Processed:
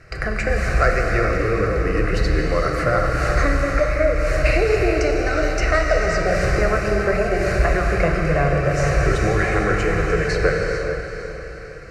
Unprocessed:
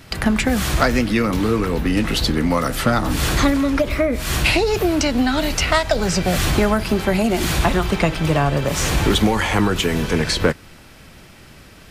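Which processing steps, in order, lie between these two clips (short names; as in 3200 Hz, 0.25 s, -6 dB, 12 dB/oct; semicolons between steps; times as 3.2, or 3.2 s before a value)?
LPF 4300 Hz 12 dB/oct; fixed phaser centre 910 Hz, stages 6; diffused feedback echo 0.473 s, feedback 47%, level -9 dB; non-linear reverb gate 0.48 s flat, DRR 1 dB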